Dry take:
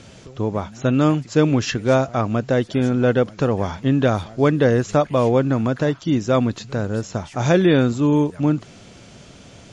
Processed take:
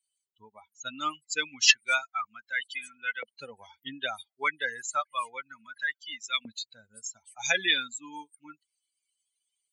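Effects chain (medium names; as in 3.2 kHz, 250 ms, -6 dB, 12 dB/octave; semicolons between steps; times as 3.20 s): expander on every frequency bin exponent 3; FFT filter 220 Hz 0 dB, 820 Hz -11 dB, 2.3 kHz +11 dB; LFO high-pass saw up 0.31 Hz 580–2000 Hz; trim -1 dB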